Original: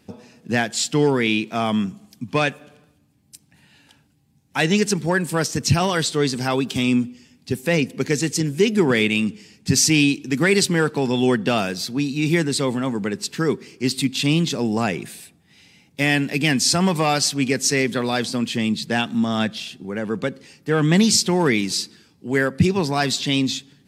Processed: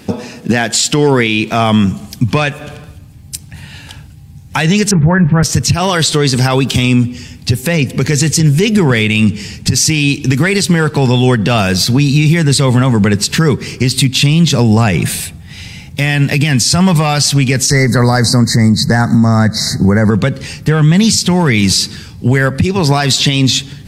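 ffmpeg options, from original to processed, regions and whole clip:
-filter_complex "[0:a]asettb=1/sr,asplit=3[a][b][c];[a]atrim=end=4.914[d];[b]atrim=start=4.91:end=5.43,asetpts=PTS-STARTPTS,afade=t=in:d=0.004:c=qsin,afade=t=out:st=0.516:d=0.004:c=qsin,lowpass=f=1.9k:w=0.5412,lowpass=f=1.9k:w=1.3066,asubboost=boost=11.5:cutoff=240,asplit=2[e][f];[f]adelay=21,volume=-12.5dB[g];[e][g]amix=inputs=2:normalize=0,atrim=end_sample=22932[h];[c]atrim=start=5.426[i];[d][h]acrossfade=d=0.004:c1=hsin:c2=qsin[j];[j][i]acrossfade=d=0.004:c1=qsin:c2=hsin,asettb=1/sr,asplit=3[k][l][m];[k]atrim=end=17.704[n];[l]atrim=start=17.7:end=20.11,asetpts=PTS-STARTPTS,afade=t=in:d=0.004:c=qsin,afade=t=out:st=2.406:d=0.004:c=qsin,asuperstop=centerf=2900:order=20:qfactor=1.7,acontrast=24[o];[m]atrim=start=20.106[p];[n][o]acrossfade=d=0.004:c1=hsin:c2=qsin[q];[q][p]acrossfade=d=0.004:c1=qsin:c2=hsin,asubboost=boost=10:cutoff=92,acompressor=threshold=-25dB:ratio=6,alimiter=level_in=21dB:limit=-1dB:release=50:level=0:latency=1,volume=-1dB"

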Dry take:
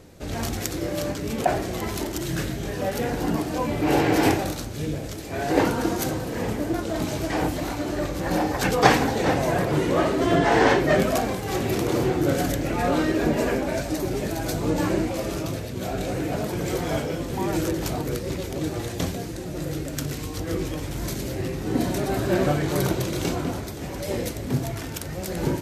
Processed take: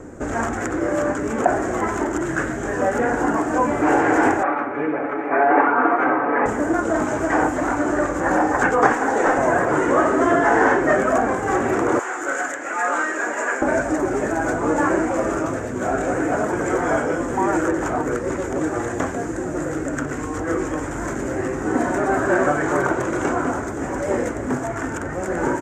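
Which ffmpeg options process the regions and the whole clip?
-filter_complex "[0:a]asettb=1/sr,asplit=3[a][b][c];[a]atrim=end=4.434[d];[b]atrim=start=4.43:end=6.46,asetpts=PTS-STARTPTS,afade=t=in:d=0.004:c=qsin,afade=t=out:st=2.026:d=0.004:c=qsin,highpass=400,equalizer=f=820:t=q:w=4:g=7,equalizer=f=1.2k:t=q:w=4:g=7,equalizer=f=2.3k:t=q:w=4:g=9,lowpass=f=2.4k:w=0.5412,lowpass=f=2.4k:w=1.3066,aecho=1:1:7:0.63,atrim=end_sample=89523[e];[c]atrim=start=6.456[f];[d][e]acrossfade=d=0.004:c1=hsin:c2=qsin[g];[g][f]acrossfade=d=0.004:c1=qsin:c2=hsin,asettb=1/sr,asplit=3[h][i][j];[h]atrim=end=8.934[k];[i]atrim=start=8.93:end=9.38,asetpts=PTS-STARTPTS,afade=t=in:d=0.004:c=qsin,afade=t=out:st=0.446:d=0.004:c=qsin,bass=f=250:g=-14,treble=f=4k:g=5,aeval=exprs='clip(val(0),-1,0.0841)':c=same[l];[j]atrim=start=9.376[m];[k][l]acrossfade=d=0.004:c1=hsin:c2=qsin[n];[n][m]acrossfade=d=0.004:c1=qsin:c2=hsin,asettb=1/sr,asplit=3[o][p][q];[o]atrim=end=11.994[r];[p]atrim=start=11.99:end=13.62,asetpts=PTS-STARTPTS,afade=t=in:d=0.004:c=qsin,afade=t=out:st=1.626:d=0.004:c=qsin,highpass=1.2k,equalizer=f=7.1k:t=o:w=0.3:g=6.5[s];[q]atrim=start=13.616[t];[r][s]acrossfade=d=0.004:c1=hsin:c2=qsin[u];[u][t]acrossfade=d=0.004:c1=qsin:c2=hsin,lowshelf=f=370:g=8.5,acrossover=split=580|3400[v][w][x];[v]acompressor=threshold=-31dB:ratio=4[y];[w]acompressor=threshold=-26dB:ratio=4[z];[x]acompressor=threshold=-42dB:ratio=4[aa];[y][z][aa]amix=inputs=3:normalize=0,firequalizer=gain_entry='entry(180,0);entry(250,11);entry(560,9);entry(1500,15);entry(2400,0);entry(4200,-13);entry(7100,11);entry(11000,-12)':delay=0.05:min_phase=1,volume=-1dB"

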